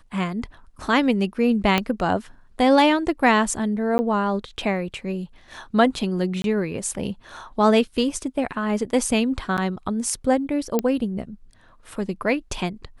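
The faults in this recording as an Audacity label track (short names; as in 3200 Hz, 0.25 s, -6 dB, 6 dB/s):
1.780000	1.780000	pop -6 dBFS
3.980000	3.990000	gap 10 ms
6.420000	6.440000	gap 22 ms
9.570000	9.580000	gap 8.6 ms
10.790000	10.790000	pop -8 dBFS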